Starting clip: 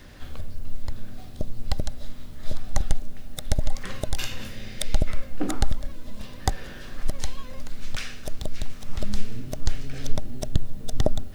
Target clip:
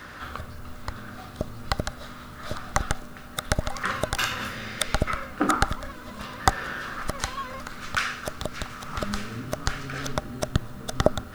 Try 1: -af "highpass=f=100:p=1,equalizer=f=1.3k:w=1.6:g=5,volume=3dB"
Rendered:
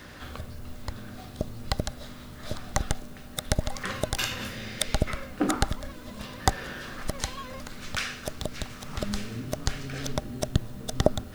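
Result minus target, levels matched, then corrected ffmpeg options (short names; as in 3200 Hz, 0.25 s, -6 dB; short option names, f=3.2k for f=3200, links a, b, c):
1000 Hz band -3.5 dB
-af "highpass=f=100:p=1,equalizer=f=1.3k:w=1.6:g=15.5,volume=3dB"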